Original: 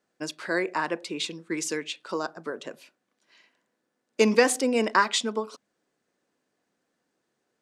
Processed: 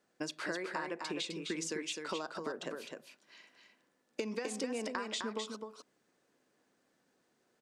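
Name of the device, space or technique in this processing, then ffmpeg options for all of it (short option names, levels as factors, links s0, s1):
serial compression, leveller first: -filter_complex "[0:a]acrossover=split=9800[s0][s1];[s1]acompressor=threshold=0.001:ratio=4:attack=1:release=60[s2];[s0][s2]amix=inputs=2:normalize=0,acompressor=threshold=0.0631:ratio=3,acompressor=threshold=0.0141:ratio=6,aecho=1:1:257:0.562,volume=1.12"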